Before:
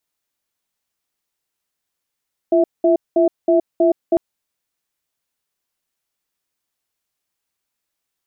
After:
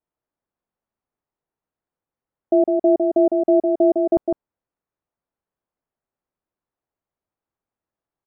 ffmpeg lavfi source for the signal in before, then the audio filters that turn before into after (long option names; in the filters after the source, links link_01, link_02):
-f lavfi -i "aevalsrc='0.211*(sin(2*PI*343*t)+sin(2*PI*657*t))*clip(min(mod(t,0.32),0.12-mod(t,0.32))/0.005,0,1)':duration=1.65:sample_rate=44100"
-af "lowpass=1000,aecho=1:1:156:0.596"